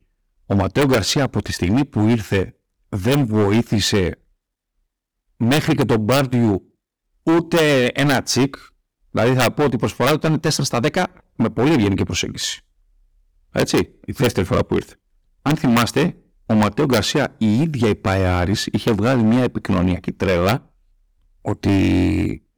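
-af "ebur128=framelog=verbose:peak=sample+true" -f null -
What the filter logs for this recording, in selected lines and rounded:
Integrated loudness:
  I:         -18.6 LUFS
  Threshold: -29.2 LUFS
Loudness range:
  LRA:         3.1 LU
  Threshold: -39.4 LUFS
  LRA low:   -21.2 LUFS
  LRA high:  -18.1 LUFS
Sample peak:
  Peak:      -12.1 dBFS
True peak:
  Peak:       -8.3 dBFS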